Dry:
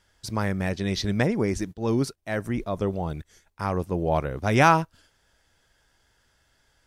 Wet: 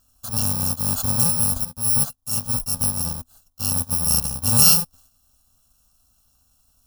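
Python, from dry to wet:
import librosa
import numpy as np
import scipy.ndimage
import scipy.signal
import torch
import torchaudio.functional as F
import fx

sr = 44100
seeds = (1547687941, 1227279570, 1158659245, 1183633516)

y = fx.bit_reversed(x, sr, seeds[0], block=128)
y = fx.peak_eq(y, sr, hz=250.0, db=9.0, octaves=0.29)
y = fx.fixed_phaser(y, sr, hz=880.0, stages=4)
y = y * librosa.db_to_amplitude(4.5)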